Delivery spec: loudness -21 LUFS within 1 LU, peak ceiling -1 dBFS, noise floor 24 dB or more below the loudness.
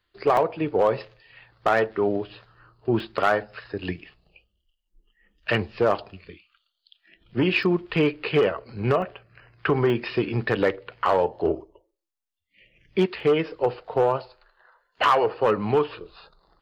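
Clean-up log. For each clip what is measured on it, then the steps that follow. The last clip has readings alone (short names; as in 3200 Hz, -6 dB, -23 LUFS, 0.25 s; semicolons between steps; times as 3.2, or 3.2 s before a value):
clipped 0.3%; flat tops at -12.0 dBFS; dropouts 6; longest dropout 1.7 ms; loudness -24.5 LUFS; peak -12.0 dBFS; loudness target -21.0 LUFS
-> clip repair -12 dBFS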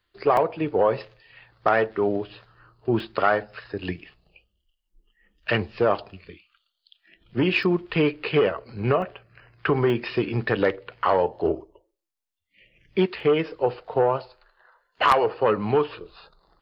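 clipped 0.0%; dropouts 6; longest dropout 1.7 ms
-> interpolate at 0.37/3/7.63/9.02/9.9/13.2, 1.7 ms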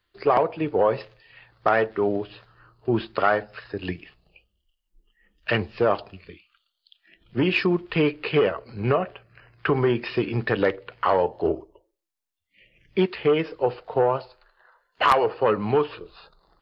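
dropouts 0; loudness -24.0 LUFS; peak -3.0 dBFS; loudness target -21.0 LUFS
-> gain +3 dB; limiter -1 dBFS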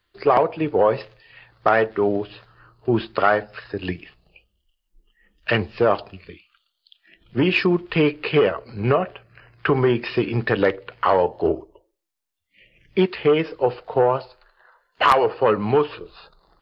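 loudness -21.0 LUFS; peak -1.0 dBFS; noise floor -75 dBFS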